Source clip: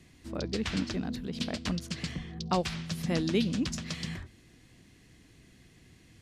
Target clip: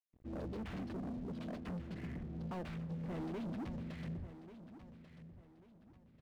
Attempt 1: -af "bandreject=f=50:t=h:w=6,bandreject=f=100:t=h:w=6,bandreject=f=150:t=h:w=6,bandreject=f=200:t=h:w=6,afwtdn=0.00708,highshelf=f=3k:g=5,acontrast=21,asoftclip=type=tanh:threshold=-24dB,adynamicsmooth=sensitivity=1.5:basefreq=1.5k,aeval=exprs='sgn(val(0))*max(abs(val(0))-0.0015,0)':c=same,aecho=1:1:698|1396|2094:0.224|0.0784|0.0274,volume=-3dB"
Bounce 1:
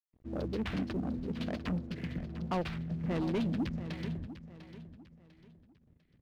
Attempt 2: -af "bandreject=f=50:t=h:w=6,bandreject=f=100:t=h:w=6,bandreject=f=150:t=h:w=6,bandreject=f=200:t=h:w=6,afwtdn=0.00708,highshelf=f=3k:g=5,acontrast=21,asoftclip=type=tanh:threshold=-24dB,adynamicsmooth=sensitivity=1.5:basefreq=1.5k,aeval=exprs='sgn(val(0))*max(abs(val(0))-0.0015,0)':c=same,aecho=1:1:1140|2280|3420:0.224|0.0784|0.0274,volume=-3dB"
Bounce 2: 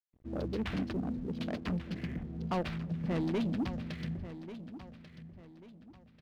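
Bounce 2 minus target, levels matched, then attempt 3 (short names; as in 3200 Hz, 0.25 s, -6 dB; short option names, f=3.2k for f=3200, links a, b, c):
soft clip: distortion -7 dB
-af "bandreject=f=50:t=h:w=6,bandreject=f=100:t=h:w=6,bandreject=f=150:t=h:w=6,bandreject=f=200:t=h:w=6,afwtdn=0.00708,highshelf=f=3k:g=5,acontrast=21,asoftclip=type=tanh:threshold=-35.5dB,adynamicsmooth=sensitivity=1.5:basefreq=1.5k,aeval=exprs='sgn(val(0))*max(abs(val(0))-0.0015,0)':c=same,aecho=1:1:1140|2280|3420:0.224|0.0784|0.0274,volume=-3dB"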